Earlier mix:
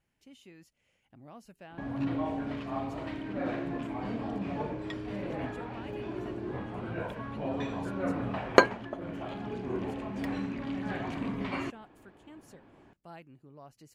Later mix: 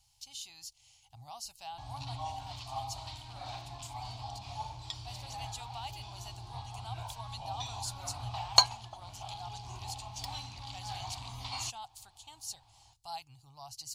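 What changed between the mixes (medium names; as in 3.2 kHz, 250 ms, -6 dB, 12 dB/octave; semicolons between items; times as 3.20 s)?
speech +9.0 dB; master: add FFT filter 120 Hz 0 dB, 180 Hz -27 dB, 510 Hz -29 dB, 800 Hz +3 dB, 1.7 kHz -19 dB, 4.3 kHz +15 dB, 6.2 kHz +13 dB, 12 kHz +8 dB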